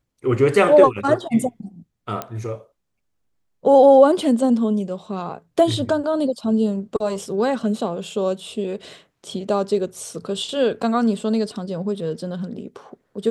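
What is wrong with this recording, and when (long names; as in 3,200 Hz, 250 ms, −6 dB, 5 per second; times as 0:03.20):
0:02.22: click −12 dBFS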